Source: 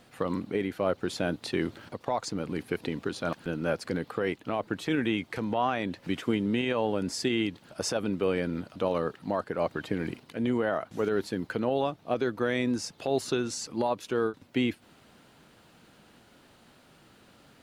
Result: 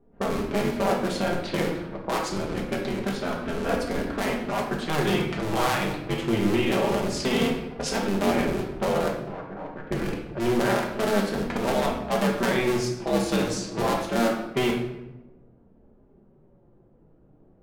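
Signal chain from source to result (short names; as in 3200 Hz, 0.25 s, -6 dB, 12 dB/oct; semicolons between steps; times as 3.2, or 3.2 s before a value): cycle switcher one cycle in 2, inverted; flange 0.26 Hz, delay 4.1 ms, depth 2.4 ms, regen -37%; 9.08–9.87 level quantiser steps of 21 dB; low-pass opened by the level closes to 350 Hz, open at -31.5 dBFS; shoebox room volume 350 m³, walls mixed, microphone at 1.2 m; gain +4 dB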